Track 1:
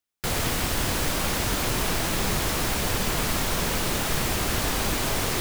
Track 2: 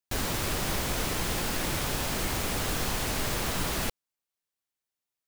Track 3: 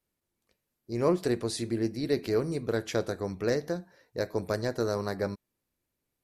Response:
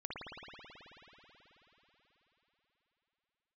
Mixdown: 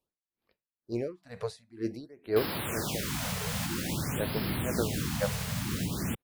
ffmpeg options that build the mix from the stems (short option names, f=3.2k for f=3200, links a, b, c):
-filter_complex "[1:a]highpass=150,asubboost=boost=9:cutoff=220,alimiter=limit=-19dB:level=0:latency=1:release=328,adelay=2250,volume=-2.5dB[a];[2:a]bass=f=250:g=-5,treble=f=4k:g=-8,aeval=exprs='val(0)*pow(10,-27*(0.5-0.5*cos(2*PI*2.1*n/s))/20)':c=same,volume=2.5dB[b];[a][b]amix=inputs=2:normalize=0,afftfilt=real='re*(1-between(b*sr/1024,280*pow(7700/280,0.5+0.5*sin(2*PI*0.51*pts/sr))/1.41,280*pow(7700/280,0.5+0.5*sin(2*PI*0.51*pts/sr))*1.41))':imag='im*(1-between(b*sr/1024,280*pow(7700/280,0.5+0.5*sin(2*PI*0.51*pts/sr))/1.41,280*pow(7700/280,0.5+0.5*sin(2*PI*0.51*pts/sr))*1.41))':win_size=1024:overlap=0.75"